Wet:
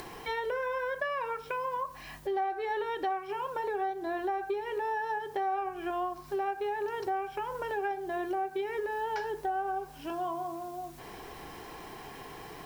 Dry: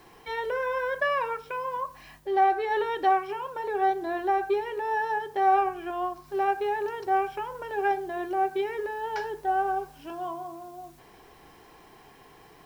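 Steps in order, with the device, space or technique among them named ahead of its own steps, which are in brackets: upward and downward compression (upward compressor, threshold -40 dBFS; compressor 5:1, threshold -33 dBFS, peak gain reduction 13.5 dB); gain +2.5 dB

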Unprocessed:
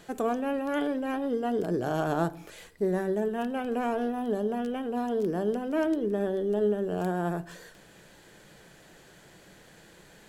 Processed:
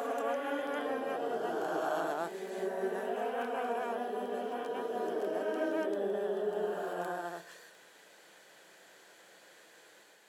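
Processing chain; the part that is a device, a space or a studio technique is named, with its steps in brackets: ghost voice (reverse; reverb RT60 2.9 s, pre-delay 0.118 s, DRR -2 dB; reverse; HPF 490 Hz 12 dB/oct); gain -6 dB

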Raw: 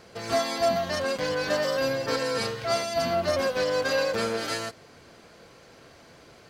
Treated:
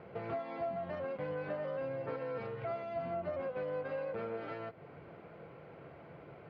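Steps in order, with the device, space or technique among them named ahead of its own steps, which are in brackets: bass amplifier (compressor 4:1, threshold -38 dBFS, peak gain reduction 15.5 dB; speaker cabinet 86–2100 Hz, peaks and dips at 150 Hz +6 dB, 240 Hz -6 dB, 1100 Hz -4 dB, 1700 Hz -9 dB); gain +1 dB

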